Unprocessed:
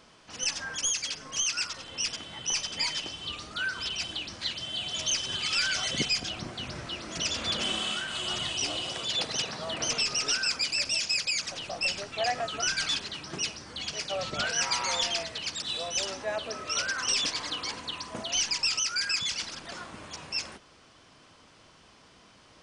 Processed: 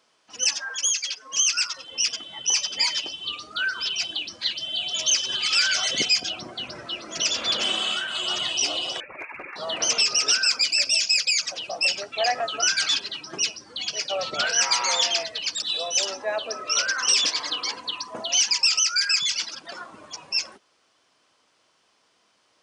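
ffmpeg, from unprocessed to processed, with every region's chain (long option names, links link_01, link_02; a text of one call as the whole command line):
ffmpeg -i in.wav -filter_complex "[0:a]asettb=1/sr,asplit=3[link_01][link_02][link_03];[link_01]atrim=end=0.584[link_04];[link_02]atrim=start=0.58:end=1.31,asetpts=PTS-STARTPTS,afade=type=in:duration=0.004:curve=qsin,afade=type=out:start_time=0.726:duration=0.004:curve=qsin,highshelf=frequency=4000:gain=-3.5,aeval=exprs='val(0)+0.00178*(sin(2*PI*60*n/s)+sin(2*PI*2*60*n/s)/2+sin(2*PI*3*60*n/s)/3+sin(2*PI*4*60*n/s)/4+sin(2*PI*5*60*n/s)/5)':channel_layout=same,highpass=frequency=410:poles=1[link_05];[link_03]atrim=start=1.306[link_06];[link_04][link_05]acrossfade=duration=0.004:curve1=hsin:curve2=qsin[link_07];[link_07][link_06]acrossfade=duration=0.004:curve1=qsin:curve2=hsin,asettb=1/sr,asplit=3[link_08][link_09][link_10];[link_08]atrim=end=9.004[link_11];[link_09]atrim=start=9:end=9.56,asetpts=PTS-STARTPTS,afade=type=in:duration=0.004:curve=qsin,afade=type=out:start_time=0.556:duration=0.004:curve=qsin,highpass=frequency=550:poles=1,lowpass=frequency=2500:width_type=q:width=0.5098,lowpass=frequency=2500:width_type=q:width=0.6013,lowpass=frequency=2500:width_type=q:width=0.9,lowpass=frequency=2500:width_type=q:width=2.563,afreqshift=-2900,asoftclip=type=hard:threshold=-33.5dB[link_12];[link_10]atrim=start=9.556[link_13];[link_11][link_12]acrossfade=duration=0.004:curve1=hsin:curve2=qsin[link_14];[link_14][link_13]acrossfade=duration=0.004:curve1=qsin:curve2=hsin,afftdn=noise_reduction=14:noise_floor=-41,highpass=77,bass=frequency=250:gain=-13,treble=frequency=4000:gain=3,volume=5.5dB" out.wav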